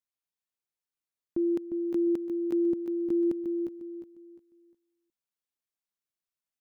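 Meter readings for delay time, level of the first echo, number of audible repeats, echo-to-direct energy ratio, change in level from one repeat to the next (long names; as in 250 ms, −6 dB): 354 ms, −7.0 dB, 3, −6.5 dB, −10.5 dB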